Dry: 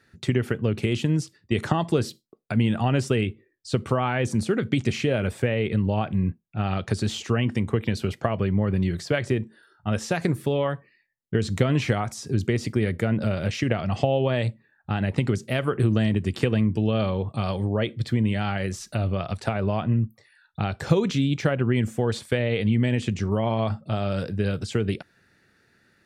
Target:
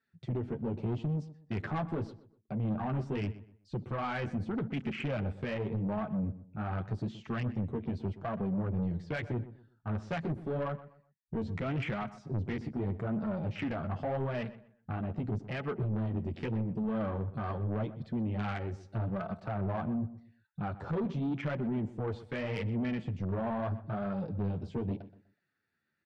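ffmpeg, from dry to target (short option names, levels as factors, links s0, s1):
-filter_complex "[0:a]highpass=f=100:p=1,afwtdn=0.0282,lowpass=4000,equalizer=f=450:w=1.4:g=-5,alimiter=limit=0.133:level=0:latency=1:release=13,flanger=delay=4.5:depth=8.8:regen=-3:speed=0.83:shape=sinusoidal,asoftclip=type=tanh:threshold=0.0398,asplit=2[s0][s1];[s1]adelay=124,lowpass=f=2600:p=1,volume=0.178,asplit=2[s2][s3];[s3]adelay=124,lowpass=f=2600:p=1,volume=0.3,asplit=2[s4][s5];[s5]adelay=124,lowpass=f=2600:p=1,volume=0.3[s6];[s0][s2][s4][s6]amix=inputs=4:normalize=0"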